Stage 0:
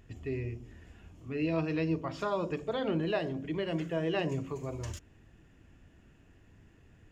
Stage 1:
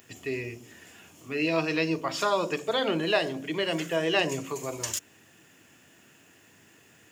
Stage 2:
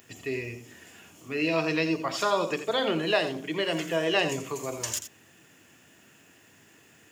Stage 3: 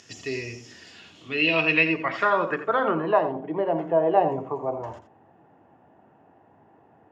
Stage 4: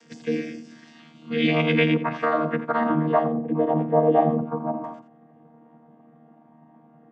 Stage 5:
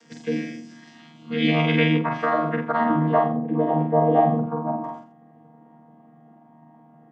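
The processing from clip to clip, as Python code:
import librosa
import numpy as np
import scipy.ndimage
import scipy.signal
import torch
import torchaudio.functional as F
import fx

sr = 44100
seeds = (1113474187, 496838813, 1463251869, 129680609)

y1 = scipy.signal.sosfilt(scipy.signal.butter(4, 99.0, 'highpass', fs=sr, output='sos'), x)
y1 = fx.riaa(y1, sr, side='recording')
y1 = y1 * librosa.db_to_amplitude(8.0)
y2 = y1 + 10.0 ** (-10.5 / 20.0) * np.pad(y1, (int(84 * sr / 1000.0), 0))[:len(y1)]
y3 = fx.notch(y2, sr, hz=2400.0, q=28.0)
y3 = fx.filter_sweep_lowpass(y3, sr, from_hz=5600.0, to_hz=820.0, start_s=0.61, end_s=3.47, q=4.2)
y3 = y3 * librosa.db_to_amplitude(1.0)
y4 = fx.chord_vocoder(y3, sr, chord='bare fifth', root=51)
y4 = y4 * librosa.db_to_amplitude(2.5)
y5 = fx.peak_eq(y4, sr, hz=2500.0, db=-2.5, octaves=0.28)
y5 = fx.doubler(y5, sr, ms=46.0, db=-3.5)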